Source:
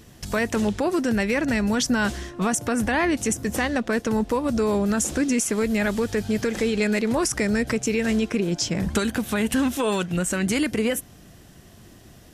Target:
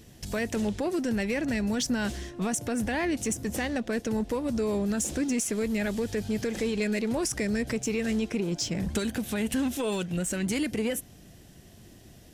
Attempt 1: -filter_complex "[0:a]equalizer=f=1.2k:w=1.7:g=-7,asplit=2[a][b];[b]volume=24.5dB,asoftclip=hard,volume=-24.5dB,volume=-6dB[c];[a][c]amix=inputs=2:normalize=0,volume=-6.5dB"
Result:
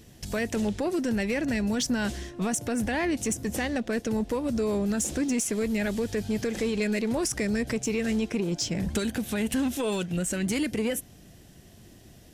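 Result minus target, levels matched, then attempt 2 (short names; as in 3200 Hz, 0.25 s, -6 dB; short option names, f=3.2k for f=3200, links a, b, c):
overloaded stage: distortion -4 dB
-filter_complex "[0:a]equalizer=f=1.2k:w=1.7:g=-7,asplit=2[a][b];[b]volume=31dB,asoftclip=hard,volume=-31dB,volume=-6dB[c];[a][c]amix=inputs=2:normalize=0,volume=-6.5dB"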